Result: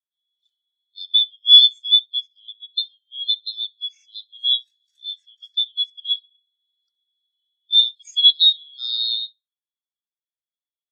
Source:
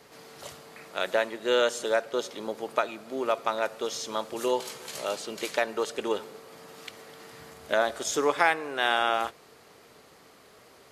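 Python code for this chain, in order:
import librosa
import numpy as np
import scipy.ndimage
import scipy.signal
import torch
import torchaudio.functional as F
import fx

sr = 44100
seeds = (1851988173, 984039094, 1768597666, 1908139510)

p1 = fx.band_shuffle(x, sr, order='2413')
p2 = scipy.signal.sosfilt(scipy.signal.butter(4, 1300.0, 'highpass', fs=sr, output='sos'), p1)
p3 = fx.high_shelf(p2, sr, hz=2800.0, db=6.5)
p4 = p3 + fx.echo_feedback(p3, sr, ms=66, feedback_pct=42, wet_db=-14, dry=0)
p5 = fx.spectral_expand(p4, sr, expansion=2.5)
y = p5 * 10.0 ** (4.5 / 20.0)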